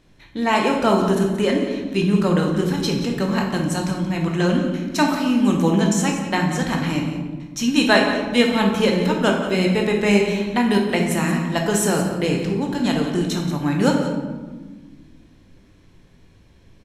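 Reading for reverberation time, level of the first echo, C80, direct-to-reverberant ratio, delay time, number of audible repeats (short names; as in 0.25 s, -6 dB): 1.4 s, -12.0 dB, 5.5 dB, 0.5 dB, 0.178 s, 1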